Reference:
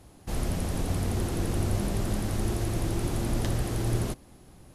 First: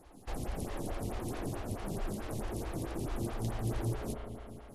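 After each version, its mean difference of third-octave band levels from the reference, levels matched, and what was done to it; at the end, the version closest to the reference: 5.0 dB: compression, threshold -30 dBFS, peak gain reduction 9 dB; spring tank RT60 2.8 s, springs 35 ms, chirp 50 ms, DRR 2 dB; lamp-driven phase shifter 4.6 Hz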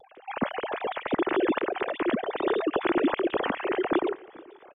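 15.0 dB: formants replaced by sine waves; vibrato 1.3 Hz 39 cents; on a send: feedback delay 435 ms, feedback 30%, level -22 dB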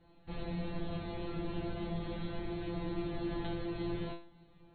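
9.5 dB: brick-wall FIR low-pass 4.4 kHz; peaking EQ 1.3 kHz -2.5 dB 0.22 oct; feedback comb 170 Hz, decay 0.37 s, harmonics all, mix 100%; trim +5.5 dB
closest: first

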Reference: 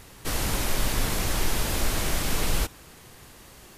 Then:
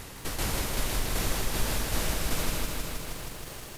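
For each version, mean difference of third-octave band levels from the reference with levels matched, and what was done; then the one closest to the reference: 5.0 dB: compression 4:1, threshold -32 dBFS, peak gain reduction 11.5 dB; tremolo saw down 2.6 Hz, depth 60%; bit-crushed delay 158 ms, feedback 80%, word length 10-bit, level -4 dB; trim +6 dB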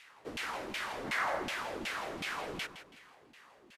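9.5 dB: time-frequency box 1.05–1.43 s, 530–2200 Hz +8 dB; tilt shelf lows -3.5 dB; LFO band-pass saw down 2.7 Hz 230–2800 Hz; feedback delay 164 ms, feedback 35%, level -12.5 dB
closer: first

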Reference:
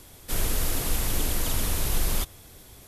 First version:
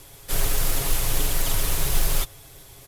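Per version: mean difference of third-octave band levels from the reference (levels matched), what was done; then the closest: 2.0 dB: peaking EQ 240 Hz -14.5 dB 0.34 oct; comb 7.3 ms, depth 52%; short-mantissa float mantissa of 2-bit; trim +2 dB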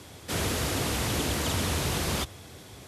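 3.5 dB: high-pass 74 Hz 24 dB/octave; in parallel at -7 dB: saturation -32.5 dBFS, distortion -9 dB; on the sum: distance through air 55 m; trim +2.5 dB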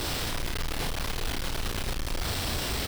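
9.5 dB: one-bit delta coder 32 kbps, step -32 dBFS; companded quantiser 2-bit; doubling 36 ms -4.5 dB; trim -4.5 dB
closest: first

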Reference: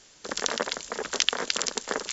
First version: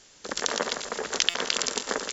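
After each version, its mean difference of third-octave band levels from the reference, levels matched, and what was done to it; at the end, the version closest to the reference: 2.0 dB: backward echo that repeats 128 ms, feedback 55%, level -10.5 dB; echo from a far wall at 20 m, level -10 dB; buffer glitch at 1.29 s, samples 256, times 8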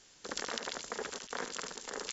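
4.5 dB: band-stop 620 Hz, Q 12; compressor with a negative ratio -31 dBFS, ratio -0.5; on a send: delay 74 ms -8.5 dB; on the sum: trim -8.5 dB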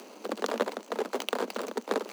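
10.5 dB: median filter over 25 samples; upward compressor, threshold -39 dBFS; steep high-pass 200 Hz 96 dB/octave; trim +4 dB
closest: first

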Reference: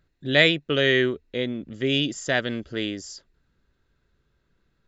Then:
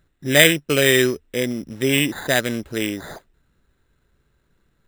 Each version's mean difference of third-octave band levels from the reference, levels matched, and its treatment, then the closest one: 8.5 dB: in parallel at -6.5 dB: short-mantissa float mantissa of 2-bit; on the sum: careless resampling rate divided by 8×, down none, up hold; trim +1 dB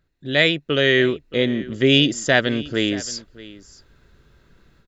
4.0 dB: level rider gain up to 16 dB; on a send: delay 623 ms -19 dB; on the sum: trim -1 dB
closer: second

